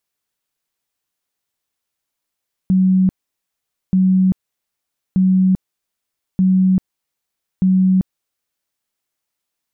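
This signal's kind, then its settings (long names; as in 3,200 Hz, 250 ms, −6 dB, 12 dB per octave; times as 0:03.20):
tone bursts 187 Hz, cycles 73, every 1.23 s, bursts 5, −10 dBFS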